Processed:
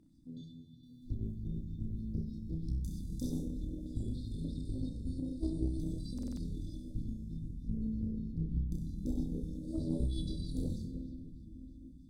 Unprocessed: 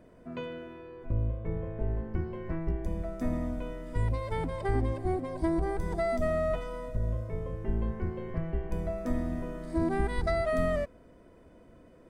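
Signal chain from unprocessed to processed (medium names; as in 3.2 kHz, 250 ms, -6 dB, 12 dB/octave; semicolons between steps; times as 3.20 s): FFT band-reject 330–3400 Hz; dynamic bell 410 Hz, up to +6 dB, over -52 dBFS, Q 1.3; simulated room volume 190 m³, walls hard, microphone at 0.33 m; valve stage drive 19 dB, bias 0.7; 0.83–3.42 s: treble shelf 2.5 kHz +12 dB; flutter echo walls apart 5.4 m, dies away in 0.44 s; buffer glitch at 6.14 s, samples 2048, times 4; sweeping bell 3.2 Hz 400–5200 Hz +8 dB; trim -4 dB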